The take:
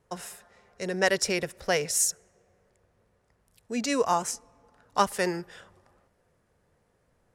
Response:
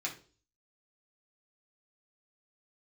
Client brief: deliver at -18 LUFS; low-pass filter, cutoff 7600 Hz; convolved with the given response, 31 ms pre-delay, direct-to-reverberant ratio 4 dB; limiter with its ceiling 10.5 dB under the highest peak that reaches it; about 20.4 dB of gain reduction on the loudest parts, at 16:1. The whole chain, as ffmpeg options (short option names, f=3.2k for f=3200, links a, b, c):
-filter_complex "[0:a]lowpass=7.6k,acompressor=threshold=-38dB:ratio=16,alimiter=level_in=10.5dB:limit=-24dB:level=0:latency=1,volume=-10.5dB,asplit=2[a][b];[1:a]atrim=start_sample=2205,adelay=31[c];[b][c]afir=irnorm=-1:irlink=0,volume=-6.5dB[d];[a][d]amix=inputs=2:normalize=0,volume=27dB"